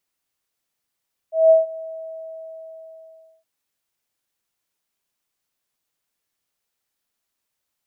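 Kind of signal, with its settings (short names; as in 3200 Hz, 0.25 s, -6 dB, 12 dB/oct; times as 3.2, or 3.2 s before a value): ADSR sine 646 Hz, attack 0.184 s, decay 0.154 s, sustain -21.5 dB, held 0.44 s, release 1.68 s -7.5 dBFS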